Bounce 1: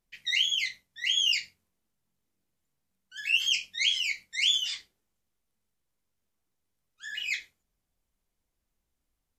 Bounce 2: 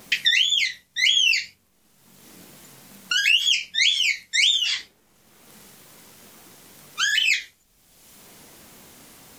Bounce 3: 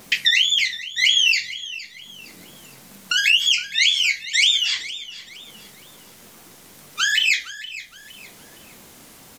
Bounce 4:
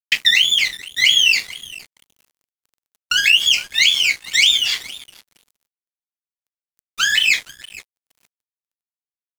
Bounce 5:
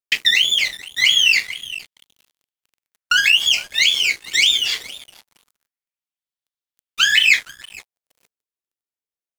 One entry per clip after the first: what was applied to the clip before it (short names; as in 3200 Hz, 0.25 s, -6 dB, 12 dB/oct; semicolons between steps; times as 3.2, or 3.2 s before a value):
wow and flutter 85 cents; three-band squash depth 100%; gain +8 dB
feedback echo 0.464 s, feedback 34%, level -15.5 dB; gain +2 dB
crossover distortion -34 dBFS; gain +4 dB
LFO bell 0.23 Hz 370–3600 Hz +8 dB; gain -1.5 dB